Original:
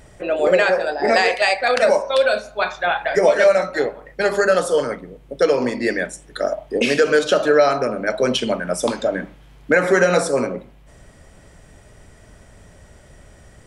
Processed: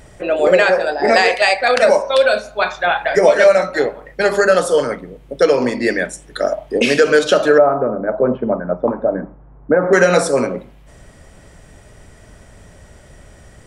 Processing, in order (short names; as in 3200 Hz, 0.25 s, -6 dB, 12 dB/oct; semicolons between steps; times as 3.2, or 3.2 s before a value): 7.58–9.93 LPF 1200 Hz 24 dB/oct; gain +3.5 dB